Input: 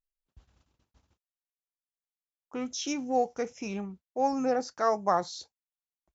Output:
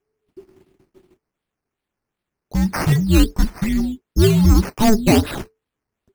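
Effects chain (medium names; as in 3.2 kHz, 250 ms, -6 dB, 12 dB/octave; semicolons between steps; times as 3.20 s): sine folder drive 6 dB, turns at -12.5 dBFS; decimation with a swept rate 9×, swing 60% 2.6 Hz; frequency shift -440 Hz; bass shelf 370 Hz +6 dB; trim +2 dB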